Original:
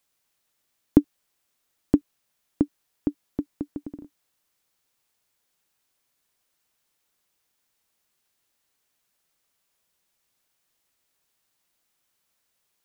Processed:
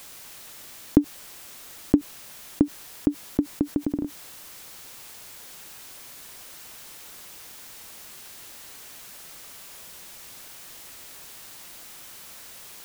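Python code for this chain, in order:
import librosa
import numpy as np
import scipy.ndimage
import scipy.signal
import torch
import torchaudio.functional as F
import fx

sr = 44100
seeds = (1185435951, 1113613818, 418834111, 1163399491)

y = fx.env_flatten(x, sr, amount_pct=50)
y = F.gain(torch.from_numpy(y), -1.0).numpy()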